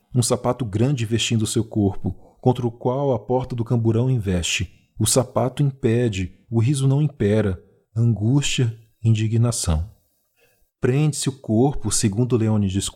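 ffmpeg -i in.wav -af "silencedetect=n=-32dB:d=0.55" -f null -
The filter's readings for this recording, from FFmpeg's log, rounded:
silence_start: 9.86
silence_end: 10.83 | silence_duration: 0.97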